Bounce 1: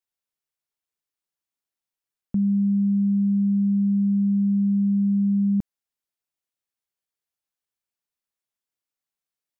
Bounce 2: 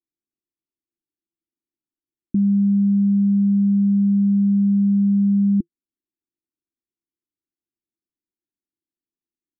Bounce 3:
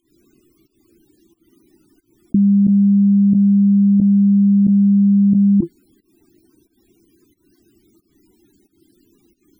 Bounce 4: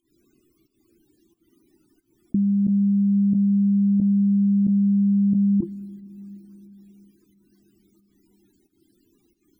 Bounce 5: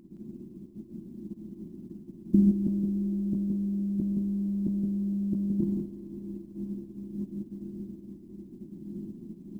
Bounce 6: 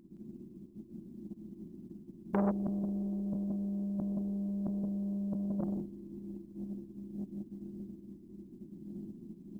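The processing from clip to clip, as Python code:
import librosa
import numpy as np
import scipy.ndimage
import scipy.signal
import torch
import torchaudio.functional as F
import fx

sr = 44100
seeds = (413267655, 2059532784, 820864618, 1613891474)

y1 = fx.curve_eq(x, sr, hz=(160.0, 340.0, 610.0), db=(0, 13, -26))
y2 = fx.volume_shaper(y1, sr, bpm=90, per_beat=1, depth_db=-20, release_ms=223.0, shape='fast start')
y2 = fx.spec_topn(y2, sr, count=32)
y2 = fx.env_flatten(y2, sr, amount_pct=100)
y2 = y2 * librosa.db_to_amplitude(4.5)
y3 = fx.rev_plate(y2, sr, seeds[0], rt60_s=4.8, hf_ratio=0.9, predelay_ms=0, drr_db=16.0)
y3 = y3 * librosa.db_to_amplitude(-7.0)
y4 = fx.bin_compress(y3, sr, power=0.2)
y4 = y4 + 10.0 ** (-5.5 / 20.0) * np.pad(y4, (int(168 * sr / 1000.0), 0))[:len(y4)]
y4 = fx.upward_expand(y4, sr, threshold_db=-32.0, expansion=2.5)
y5 = fx.transformer_sat(y4, sr, knee_hz=800.0)
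y5 = y5 * librosa.db_to_amplitude(-5.0)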